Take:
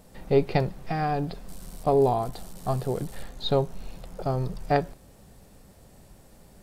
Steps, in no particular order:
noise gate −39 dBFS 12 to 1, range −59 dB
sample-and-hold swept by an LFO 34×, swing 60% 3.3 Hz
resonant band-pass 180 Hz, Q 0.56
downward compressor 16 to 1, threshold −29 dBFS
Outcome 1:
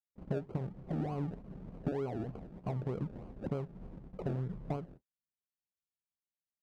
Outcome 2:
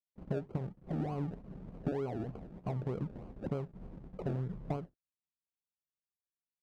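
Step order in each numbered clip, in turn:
sample-and-hold swept by an LFO, then noise gate, then downward compressor, then resonant band-pass
downward compressor, then noise gate, then sample-and-hold swept by an LFO, then resonant band-pass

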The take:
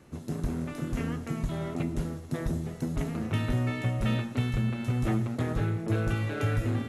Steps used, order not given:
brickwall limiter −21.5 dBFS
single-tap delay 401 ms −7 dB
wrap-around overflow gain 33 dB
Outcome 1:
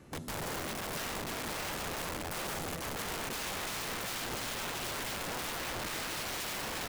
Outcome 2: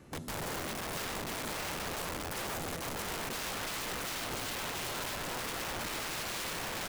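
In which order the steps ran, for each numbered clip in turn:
brickwall limiter, then single-tap delay, then wrap-around overflow
single-tap delay, then brickwall limiter, then wrap-around overflow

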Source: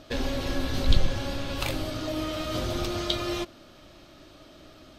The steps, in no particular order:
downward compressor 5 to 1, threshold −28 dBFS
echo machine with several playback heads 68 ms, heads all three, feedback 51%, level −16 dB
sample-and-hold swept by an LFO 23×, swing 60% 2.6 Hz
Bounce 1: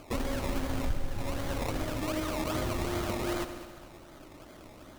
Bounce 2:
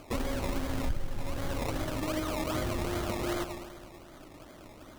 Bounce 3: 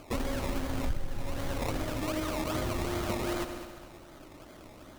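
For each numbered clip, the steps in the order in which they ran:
downward compressor, then sample-and-hold swept by an LFO, then echo machine with several playback heads
echo machine with several playback heads, then downward compressor, then sample-and-hold swept by an LFO
sample-and-hold swept by an LFO, then echo machine with several playback heads, then downward compressor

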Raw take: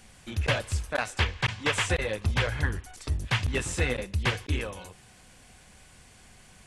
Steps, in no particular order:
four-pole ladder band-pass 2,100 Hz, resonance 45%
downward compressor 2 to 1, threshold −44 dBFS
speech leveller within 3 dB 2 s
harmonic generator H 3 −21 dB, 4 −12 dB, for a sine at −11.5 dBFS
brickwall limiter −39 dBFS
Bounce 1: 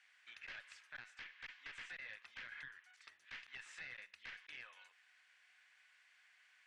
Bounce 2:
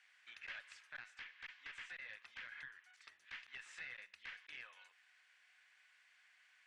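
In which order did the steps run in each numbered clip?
speech leveller, then four-pole ladder band-pass, then harmonic generator, then downward compressor, then brickwall limiter
four-pole ladder band-pass, then downward compressor, then harmonic generator, then brickwall limiter, then speech leveller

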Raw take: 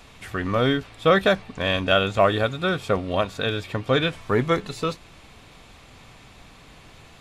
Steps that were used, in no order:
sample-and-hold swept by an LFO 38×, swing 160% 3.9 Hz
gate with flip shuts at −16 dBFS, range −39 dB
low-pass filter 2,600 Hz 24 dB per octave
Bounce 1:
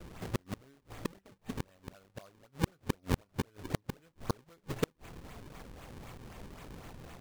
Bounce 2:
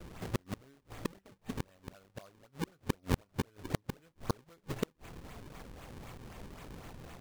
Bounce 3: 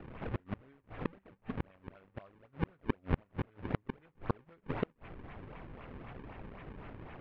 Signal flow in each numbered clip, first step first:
low-pass filter, then gate with flip, then sample-and-hold swept by an LFO
gate with flip, then low-pass filter, then sample-and-hold swept by an LFO
gate with flip, then sample-and-hold swept by an LFO, then low-pass filter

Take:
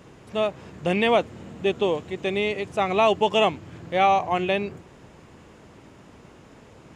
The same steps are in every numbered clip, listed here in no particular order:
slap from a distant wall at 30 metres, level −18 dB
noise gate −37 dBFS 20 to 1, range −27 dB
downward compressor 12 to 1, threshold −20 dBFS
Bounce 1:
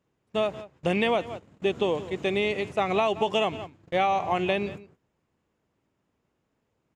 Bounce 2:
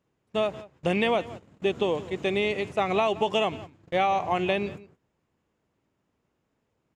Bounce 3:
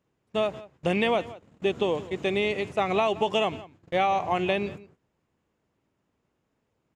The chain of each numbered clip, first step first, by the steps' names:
noise gate, then slap from a distant wall, then downward compressor
noise gate, then downward compressor, then slap from a distant wall
downward compressor, then noise gate, then slap from a distant wall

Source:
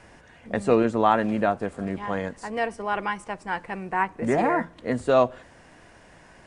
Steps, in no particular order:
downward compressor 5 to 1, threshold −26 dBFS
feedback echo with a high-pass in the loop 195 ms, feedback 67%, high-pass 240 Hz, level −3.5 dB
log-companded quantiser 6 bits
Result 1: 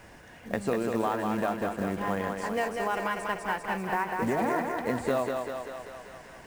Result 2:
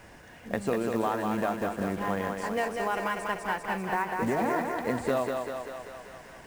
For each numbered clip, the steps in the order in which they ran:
downward compressor, then feedback echo with a high-pass in the loop, then log-companded quantiser
downward compressor, then log-companded quantiser, then feedback echo with a high-pass in the loop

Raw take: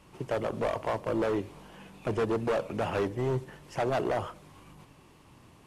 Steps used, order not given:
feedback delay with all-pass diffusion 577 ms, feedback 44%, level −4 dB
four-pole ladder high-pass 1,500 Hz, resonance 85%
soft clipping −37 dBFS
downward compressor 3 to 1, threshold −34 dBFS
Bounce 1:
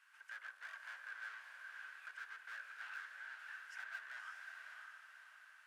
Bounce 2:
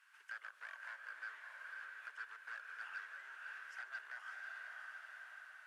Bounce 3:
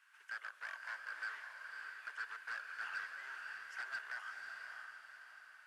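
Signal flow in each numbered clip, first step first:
soft clipping, then feedback delay with all-pass diffusion, then downward compressor, then four-pole ladder high-pass
feedback delay with all-pass diffusion, then downward compressor, then four-pole ladder high-pass, then soft clipping
four-pole ladder high-pass, then downward compressor, then soft clipping, then feedback delay with all-pass diffusion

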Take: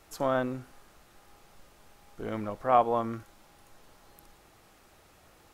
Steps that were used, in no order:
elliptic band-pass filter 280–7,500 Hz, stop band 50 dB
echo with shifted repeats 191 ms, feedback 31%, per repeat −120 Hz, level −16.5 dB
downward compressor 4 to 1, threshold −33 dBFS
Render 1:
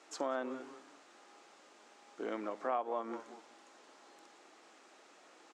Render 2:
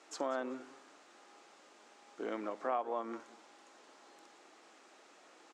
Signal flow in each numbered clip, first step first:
echo with shifted repeats, then downward compressor, then elliptic band-pass filter
downward compressor, then echo with shifted repeats, then elliptic band-pass filter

